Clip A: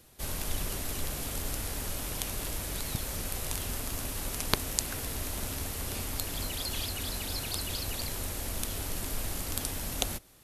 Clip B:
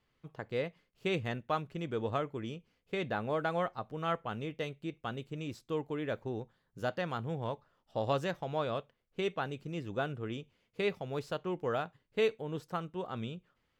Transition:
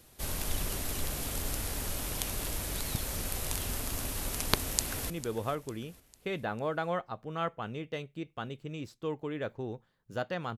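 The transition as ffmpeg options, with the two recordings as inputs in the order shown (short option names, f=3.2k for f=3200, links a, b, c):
-filter_complex "[0:a]apad=whole_dur=10.57,atrim=end=10.57,atrim=end=5.102[a];[1:a]atrim=start=1.768:end=7.24[b];[a][b]acrossfade=d=0.004:c1=hsin:c2=hsin,asplit=2[c][d];[d]afade=t=in:st=4.54:d=0.01,afade=t=out:st=5.1:d=0.01,aecho=0:1:450|900|1350|1800:0.16788|0.0755462|0.0339958|0.0152981[e];[c][e]amix=inputs=2:normalize=0"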